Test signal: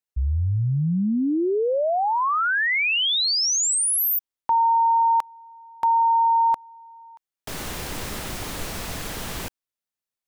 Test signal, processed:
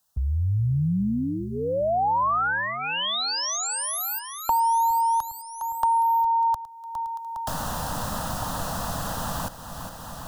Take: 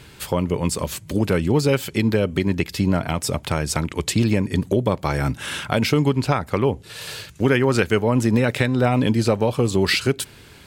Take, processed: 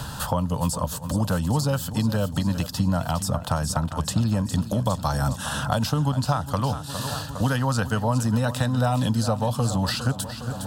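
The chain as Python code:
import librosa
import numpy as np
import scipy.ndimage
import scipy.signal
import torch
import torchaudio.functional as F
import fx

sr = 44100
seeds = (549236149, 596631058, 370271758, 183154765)

p1 = fx.fixed_phaser(x, sr, hz=920.0, stages=4)
p2 = p1 + fx.echo_feedback(p1, sr, ms=409, feedback_pct=55, wet_db=-14.5, dry=0)
y = fx.band_squash(p2, sr, depth_pct=70)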